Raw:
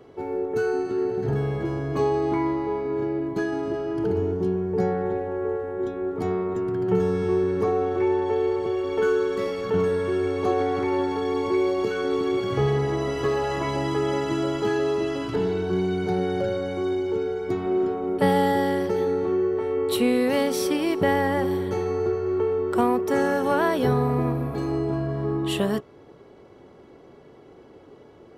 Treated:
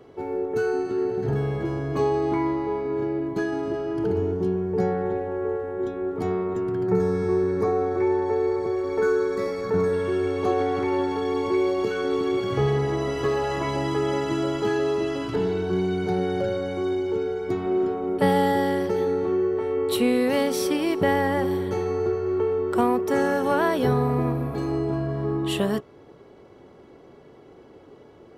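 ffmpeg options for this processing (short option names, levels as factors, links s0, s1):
-filter_complex "[0:a]asettb=1/sr,asplit=3[s0][s1][s2];[s0]atrim=end=6.864[s3];[s1]atrim=start=6.86:end=9.93,asetpts=PTS-STARTPTS,afade=t=in:d=0.004:c=qsin,afade=t=out:st=3.066:d=0.004:c=qsin,asuperstop=centerf=3000:order=4:qfactor=2.7[s4];[s2]atrim=start=9.926[s5];[s3][s4]acrossfade=d=0.004:c1=hsin:c2=qsin[s6];[s6][s5]acrossfade=d=0.004:c1=qsin:c2=hsin"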